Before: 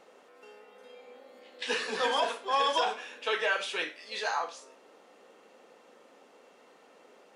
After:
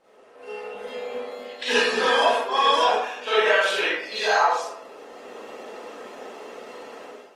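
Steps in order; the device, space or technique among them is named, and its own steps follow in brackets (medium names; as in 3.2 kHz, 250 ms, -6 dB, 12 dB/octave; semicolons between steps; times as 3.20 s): speakerphone in a meeting room (reverberation RT60 0.65 s, pre-delay 36 ms, DRR -8.5 dB; level rider gain up to 15.5 dB; trim -6 dB; Opus 24 kbps 48 kHz)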